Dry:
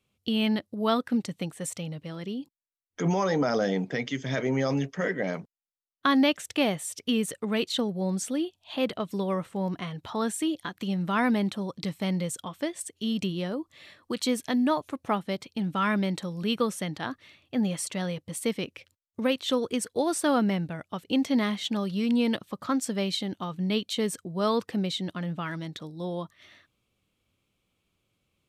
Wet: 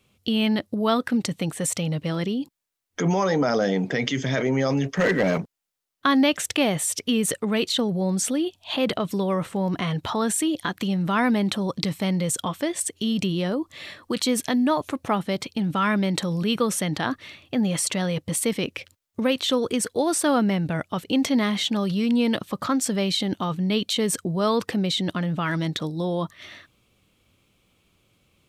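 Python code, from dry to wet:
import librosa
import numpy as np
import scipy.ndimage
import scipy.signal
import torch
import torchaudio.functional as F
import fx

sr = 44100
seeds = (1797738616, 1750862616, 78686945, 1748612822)

p1 = fx.leveller(x, sr, passes=2, at=(4.97, 5.38))
p2 = fx.over_compress(p1, sr, threshold_db=-36.0, ratio=-1.0)
p3 = p1 + (p2 * librosa.db_to_amplitude(-2.0))
y = p3 * librosa.db_to_amplitude(2.5)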